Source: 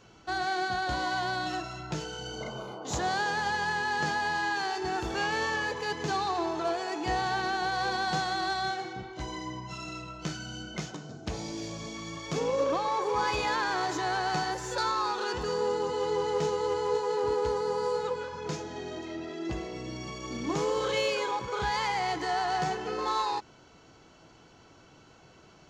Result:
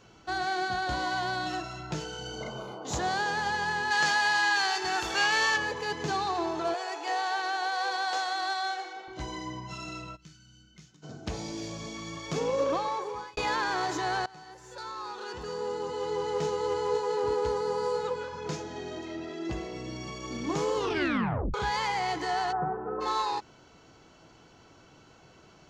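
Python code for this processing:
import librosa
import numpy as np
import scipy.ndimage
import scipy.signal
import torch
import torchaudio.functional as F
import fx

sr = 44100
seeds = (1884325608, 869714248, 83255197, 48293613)

y = fx.tilt_shelf(x, sr, db=-8.5, hz=630.0, at=(3.9, 5.56), fade=0.02)
y = fx.highpass(y, sr, hz=450.0, slope=24, at=(6.74, 9.08))
y = fx.tone_stack(y, sr, knobs='6-0-2', at=(10.15, 11.02), fade=0.02)
y = fx.cheby1_lowpass(y, sr, hz=1400.0, order=4, at=(22.51, 23.0), fade=0.02)
y = fx.edit(y, sr, fx.fade_out_span(start_s=12.78, length_s=0.59),
    fx.fade_in_from(start_s=14.26, length_s=2.52, floor_db=-23.5),
    fx.tape_stop(start_s=20.76, length_s=0.78), tone=tone)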